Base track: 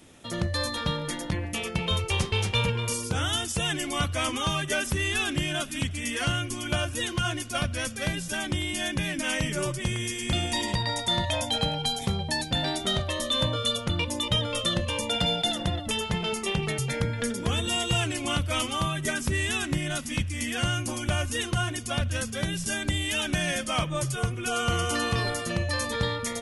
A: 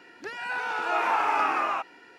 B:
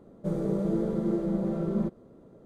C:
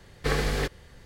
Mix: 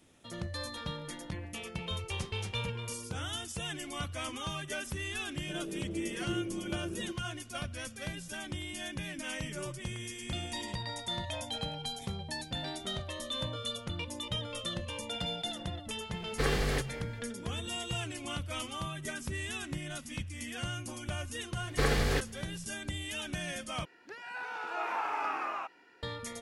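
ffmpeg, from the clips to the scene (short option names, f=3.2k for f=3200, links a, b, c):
-filter_complex "[3:a]asplit=2[a][b];[0:a]volume=-10.5dB[c];[2:a]equalizer=f=340:w=5.5:g=11.5[d];[a]asplit=2[e][f];[f]adelay=227.4,volume=-18dB,highshelf=f=4k:g=-5.12[g];[e][g]amix=inputs=2:normalize=0[h];[c]asplit=2[i][j];[i]atrim=end=23.854[k];[1:a]atrim=end=2.18,asetpts=PTS-STARTPTS,volume=-9.5dB[l];[j]atrim=start=26.026[m];[d]atrim=end=2.45,asetpts=PTS-STARTPTS,volume=-16.5dB,afade=t=in:d=0.004:c=hsin,afade=t=out:st=2.446:d=0.004:c=hsin,adelay=5230[n];[h]atrim=end=1.05,asetpts=PTS-STARTPTS,volume=-4dB,afade=t=in:d=0.004:c=hsin,afade=t=out:st=1.046:d=0.004:c=hsin,adelay=16140[o];[b]atrim=end=1.05,asetpts=PTS-STARTPTS,volume=-2dB,afade=t=in:d=0.004:c=hsin,afade=t=out:st=1.046:d=0.004:c=hsin,adelay=21530[p];[k][l]acrossfade=d=0.004:c1=hsin:c2=hsin[q];[q][m]acrossfade=d=0.004:c1=hsin:c2=hsin[r];[r][n][o][p]amix=inputs=4:normalize=0"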